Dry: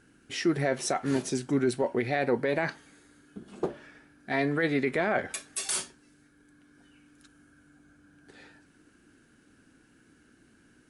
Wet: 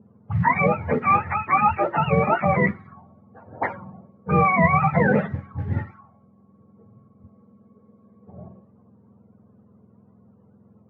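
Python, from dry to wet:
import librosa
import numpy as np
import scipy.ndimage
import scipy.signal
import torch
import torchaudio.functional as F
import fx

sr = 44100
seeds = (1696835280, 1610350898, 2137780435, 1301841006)

y = fx.octave_mirror(x, sr, pivot_hz=570.0)
y = fx.mod_noise(y, sr, seeds[0], snr_db=29)
y = fx.envelope_lowpass(y, sr, base_hz=440.0, top_hz=1900.0, q=4.0, full_db=-34.0, direction='up')
y = F.gain(torch.from_numpy(y), 8.0).numpy()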